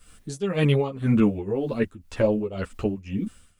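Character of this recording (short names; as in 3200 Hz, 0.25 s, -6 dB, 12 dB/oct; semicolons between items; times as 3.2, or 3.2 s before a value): a quantiser's noise floor 12-bit, dither triangular; tremolo triangle 1.9 Hz, depth 90%; a shimmering, thickened sound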